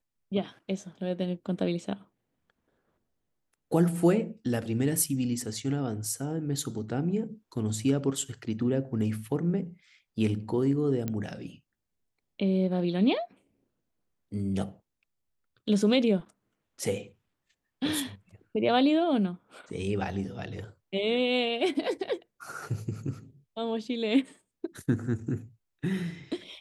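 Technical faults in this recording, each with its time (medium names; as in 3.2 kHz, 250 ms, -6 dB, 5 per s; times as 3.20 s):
11.08 s: pop -18 dBFS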